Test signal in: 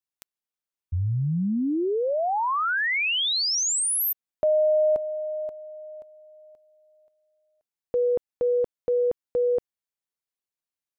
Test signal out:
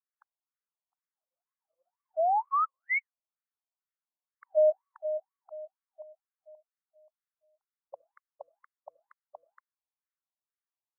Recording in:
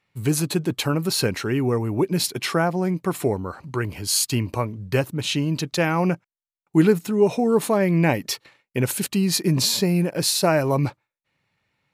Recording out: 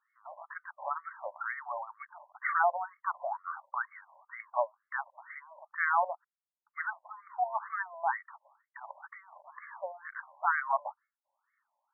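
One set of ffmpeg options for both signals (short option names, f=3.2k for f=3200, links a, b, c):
-af "highpass=200,lowpass=2.7k,afftfilt=real='re*between(b*sr/1024,750*pow(1600/750,0.5+0.5*sin(2*PI*2.1*pts/sr))/1.41,750*pow(1600/750,0.5+0.5*sin(2*PI*2.1*pts/sr))*1.41)':imag='im*between(b*sr/1024,750*pow(1600/750,0.5+0.5*sin(2*PI*2.1*pts/sr))/1.41,750*pow(1600/750,0.5+0.5*sin(2*PI*2.1*pts/sr))*1.41)':win_size=1024:overlap=0.75"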